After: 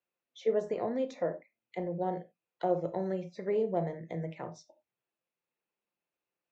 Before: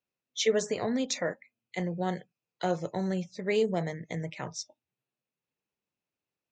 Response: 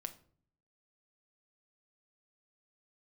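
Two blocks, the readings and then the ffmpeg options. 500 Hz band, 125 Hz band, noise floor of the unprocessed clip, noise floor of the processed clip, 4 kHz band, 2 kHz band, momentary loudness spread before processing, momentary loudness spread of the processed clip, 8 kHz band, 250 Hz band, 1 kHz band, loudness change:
−1.0 dB, −4.5 dB, below −85 dBFS, below −85 dBFS, below −15 dB, −12.0 dB, 13 LU, 13 LU, below −20 dB, −4.5 dB, −0.5 dB, −2.5 dB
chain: -filter_complex "[0:a]bass=frequency=250:gain=-11,treble=frequency=4000:gain=-13,acrossover=split=950[link_01][link_02];[link_02]acompressor=threshold=-54dB:ratio=10[link_03];[link_01][link_03]amix=inputs=2:normalize=0[link_04];[1:a]atrim=start_sample=2205,atrim=end_sample=4410[link_05];[link_04][link_05]afir=irnorm=-1:irlink=0,volume=4.5dB"

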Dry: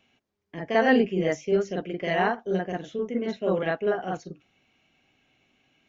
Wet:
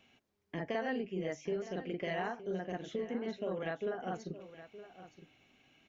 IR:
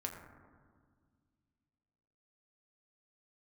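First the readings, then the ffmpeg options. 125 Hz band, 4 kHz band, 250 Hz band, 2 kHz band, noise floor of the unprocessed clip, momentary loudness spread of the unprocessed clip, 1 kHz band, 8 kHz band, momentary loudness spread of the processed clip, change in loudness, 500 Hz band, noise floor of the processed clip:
−10.0 dB, −11.0 dB, −12.0 dB, −13.0 dB, −79 dBFS, 13 LU, −12.5 dB, can't be measured, 16 LU, −12.5 dB, −12.0 dB, −80 dBFS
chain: -filter_complex "[0:a]acompressor=threshold=-35dB:ratio=5,asplit=2[link_01][link_02];[link_02]aecho=0:1:917:0.188[link_03];[link_01][link_03]amix=inputs=2:normalize=0"

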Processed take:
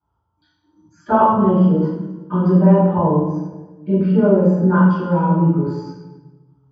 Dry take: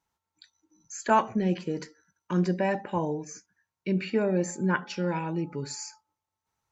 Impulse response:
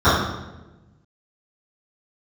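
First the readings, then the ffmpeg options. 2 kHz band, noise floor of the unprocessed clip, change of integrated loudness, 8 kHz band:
+2.5 dB, below −85 dBFS, +13.0 dB, can't be measured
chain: -filter_complex "[0:a]lowpass=frequency=1600:poles=1[link_01];[1:a]atrim=start_sample=2205,asetrate=38808,aresample=44100[link_02];[link_01][link_02]afir=irnorm=-1:irlink=0,volume=-17dB"

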